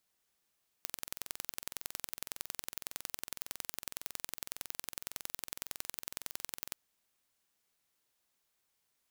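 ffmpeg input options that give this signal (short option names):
-f lavfi -i "aevalsrc='0.335*eq(mod(n,2023),0)*(0.5+0.5*eq(mod(n,4046),0))':d=5.9:s=44100"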